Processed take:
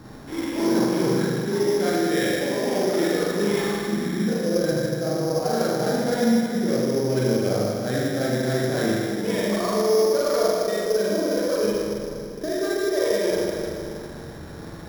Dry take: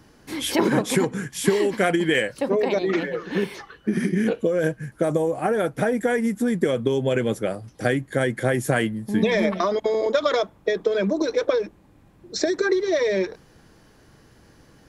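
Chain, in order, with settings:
high-shelf EQ 3,000 Hz −9 dB
mains-hum notches 50/100 Hz
reversed playback
downward compressor 6 to 1, threshold −37 dBFS, peak gain reduction 21.5 dB
reversed playback
spring reverb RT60 2.4 s, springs 39/48 ms, chirp 75 ms, DRR −7.5 dB
bad sample-rate conversion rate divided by 8×, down filtered, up hold
windowed peak hold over 3 samples
level +8 dB

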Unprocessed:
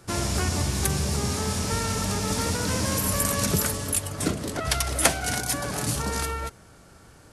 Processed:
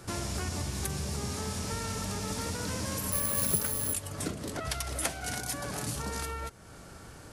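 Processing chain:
downward compressor 2 to 1, threshold −44 dBFS, peak gain reduction 16 dB
0:03.12–0:03.93: bad sample-rate conversion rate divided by 4×, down filtered, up zero stuff
level +3 dB

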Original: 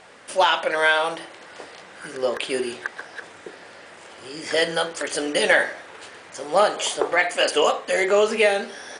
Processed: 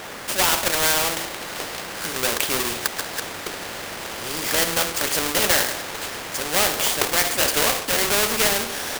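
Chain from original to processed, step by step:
each half-wave held at its own peak
every bin compressed towards the loudest bin 2 to 1
level +2.5 dB

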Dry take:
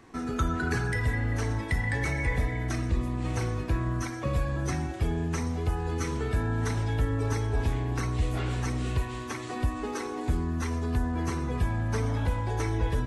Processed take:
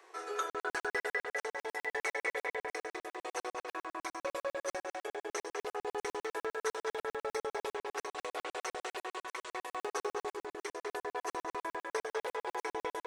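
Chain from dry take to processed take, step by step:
Butterworth high-pass 370 Hz 72 dB per octave
on a send: feedback echo with a low-pass in the loop 209 ms, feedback 52%, low-pass 3,600 Hz, level −3.5 dB
on the sum: regular buffer underruns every 0.10 s, samples 2,048, zero, from 0:00.50
level −2 dB

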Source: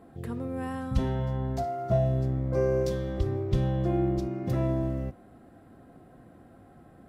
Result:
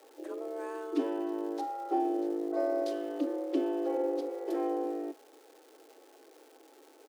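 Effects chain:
pitch shifter −3.5 semitones
surface crackle 510 per second −44 dBFS
frequency shifter +240 Hz
level −5 dB

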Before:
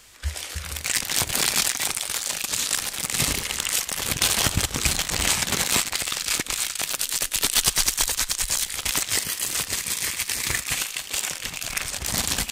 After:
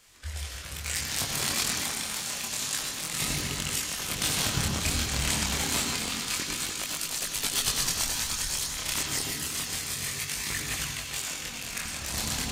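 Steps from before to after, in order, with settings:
delay that swaps between a low-pass and a high-pass 293 ms, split 1,300 Hz, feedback 52%, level −6 dB
on a send at −3 dB: convolution reverb RT60 1.1 s, pre-delay 76 ms
on the sum: multi-voice chorus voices 2, 0.28 Hz, delay 24 ms, depth 4.6 ms
level −4.5 dB

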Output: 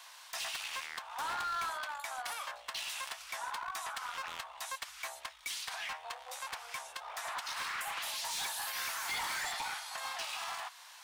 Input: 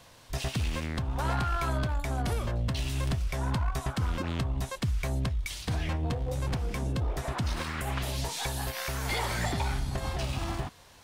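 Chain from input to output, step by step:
inverse Chebyshev high-pass filter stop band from 330 Hz, stop band 50 dB
in parallel at −2.5 dB: downward compressor, threshold −46 dBFS, peak gain reduction 15.5 dB
on the sum: hard clipping −32.5 dBFS, distortion −11 dB
level −1 dB

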